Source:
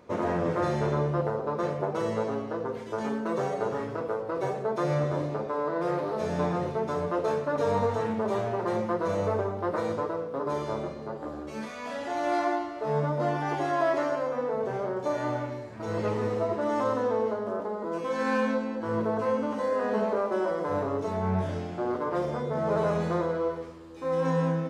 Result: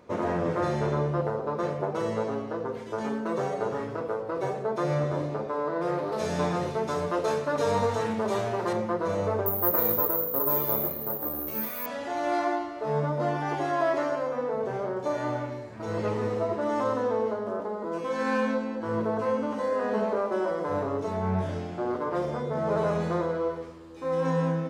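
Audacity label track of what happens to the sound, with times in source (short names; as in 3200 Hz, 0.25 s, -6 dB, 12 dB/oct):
6.120000	8.730000	high shelf 2500 Hz +9.5 dB
9.460000	11.860000	careless resampling rate divided by 3×, down none, up zero stuff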